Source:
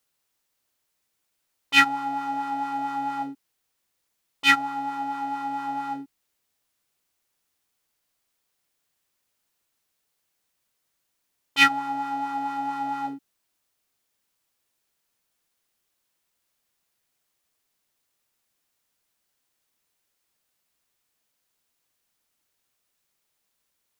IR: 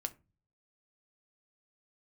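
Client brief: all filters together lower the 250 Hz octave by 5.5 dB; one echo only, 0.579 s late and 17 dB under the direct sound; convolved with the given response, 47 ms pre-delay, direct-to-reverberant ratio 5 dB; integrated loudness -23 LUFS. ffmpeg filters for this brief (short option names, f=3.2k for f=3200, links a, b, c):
-filter_complex "[0:a]equalizer=f=250:t=o:g=-6,aecho=1:1:579:0.141,asplit=2[a][b];[1:a]atrim=start_sample=2205,adelay=47[c];[b][c]afir=irnorm=-1:irlink=0,volume=-4.5dB[d];[a][d]amix=inputs=2:normalize=0"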